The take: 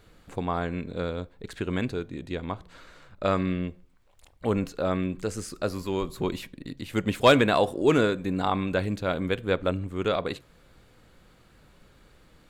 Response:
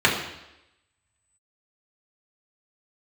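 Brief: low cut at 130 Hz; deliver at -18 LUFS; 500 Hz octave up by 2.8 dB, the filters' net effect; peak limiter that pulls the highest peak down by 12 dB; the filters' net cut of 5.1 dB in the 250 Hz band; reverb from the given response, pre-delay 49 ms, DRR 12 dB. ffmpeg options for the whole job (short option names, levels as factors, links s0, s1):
-filter_complex "[0:a]highpass=130,equalizer=f=250:t=o:g=-8.5,equalizer=f=500:t=o:g=5.5,alimiter=limit=0.158:level=0:latency=1,asplit=2[s0][s1];[1:a]atrim=start_sample=2205,adelay=49[s2];[s1][s2]afir=irnorm=-1:irlink=0,volume=0.0251[s3];[s0][s3]amix=inputs=2:normalize=0,volume=4.22"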